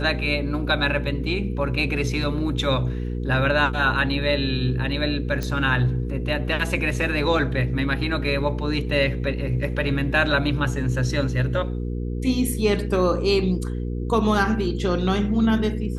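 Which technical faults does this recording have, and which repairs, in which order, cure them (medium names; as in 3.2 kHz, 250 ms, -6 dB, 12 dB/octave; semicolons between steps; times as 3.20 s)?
hum 60 Hz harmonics 8 -27 dBFS
5.43 s: pop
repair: de-click; de-hum 60 Hz, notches 8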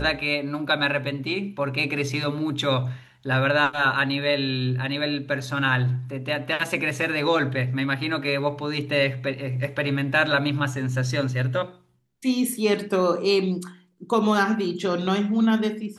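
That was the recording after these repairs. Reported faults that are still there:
nothing left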